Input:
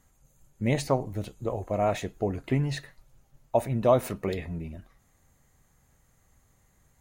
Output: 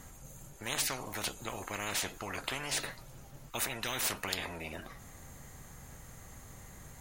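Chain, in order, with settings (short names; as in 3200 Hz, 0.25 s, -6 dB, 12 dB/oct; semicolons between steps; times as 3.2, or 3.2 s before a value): spectral compressor 10:1; gain -2 dB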